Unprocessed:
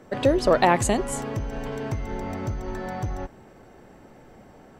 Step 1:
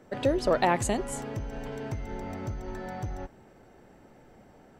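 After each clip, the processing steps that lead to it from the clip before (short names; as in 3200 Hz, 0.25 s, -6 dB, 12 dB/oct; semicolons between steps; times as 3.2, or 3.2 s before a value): notch 1100 Hz, Q 23; gain -5.5 dB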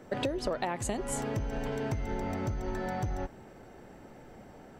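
compressor 16:1, threshold -32 dBFS, peak gain reduction 14 dB; gain +4 dB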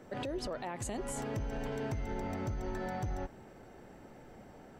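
limiter -26.5 dBFS, peak gain reduction 8.5 dB; gain -2.5 dB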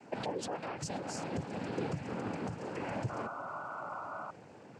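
noise vocoder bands 8; painted sound noise, 3.09–4.31, 540–1500 Hz -43 dBFS; gain +1 dB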